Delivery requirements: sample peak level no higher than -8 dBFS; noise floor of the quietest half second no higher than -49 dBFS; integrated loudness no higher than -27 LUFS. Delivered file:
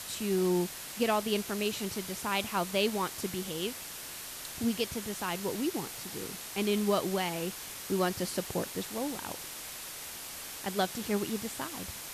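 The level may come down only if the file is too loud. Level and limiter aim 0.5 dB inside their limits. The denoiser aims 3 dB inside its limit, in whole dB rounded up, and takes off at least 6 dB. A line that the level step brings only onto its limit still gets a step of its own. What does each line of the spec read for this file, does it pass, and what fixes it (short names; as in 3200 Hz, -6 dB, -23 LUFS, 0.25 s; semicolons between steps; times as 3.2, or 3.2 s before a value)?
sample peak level -15.0 dBFS: OK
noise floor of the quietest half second -43 dBFS: fail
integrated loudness -33.0 LUFS: OK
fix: denoiser 9 dB, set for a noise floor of -43 dBFS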